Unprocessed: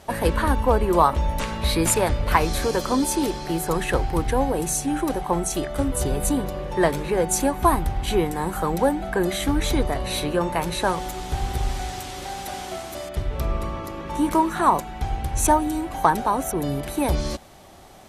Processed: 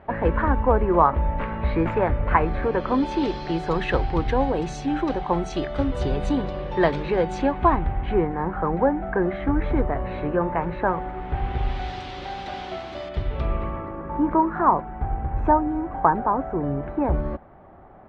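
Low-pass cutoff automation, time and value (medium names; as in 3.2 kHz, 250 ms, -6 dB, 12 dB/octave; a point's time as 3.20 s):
low-pass 24 dB/octave
2.62 s 2.1 kHz
3.32 s 4.2 kHz
7.15 s 4.2 kHz
8.22 s 1.9 kHz
11.12 s 1.9 kHz
11.90 s 4 kHz
13.29 s 4 kHz
14.00 s 1.6 kHz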